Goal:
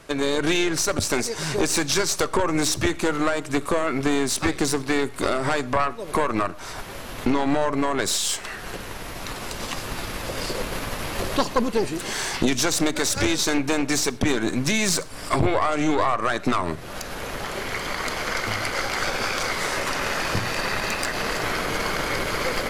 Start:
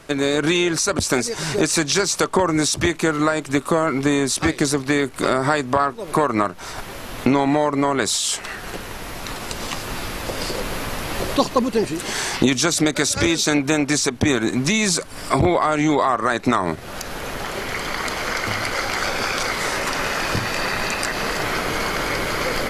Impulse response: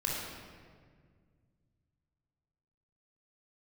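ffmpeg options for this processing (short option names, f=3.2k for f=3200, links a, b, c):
-filter_complex "[0:a]aeval=exprs='(tanh(3.98*val(0)+0.65)-tanh(0.65))/3.98':c=same,asplit=2[a][b];[1:a]atrim=start_sample=2205,atrim=end_sample=6174[c];[b][c]afir=irnorm=-1:irlink=0,volume=-20.5dB[d];[a][d]amix=inputs=2:normalize=0"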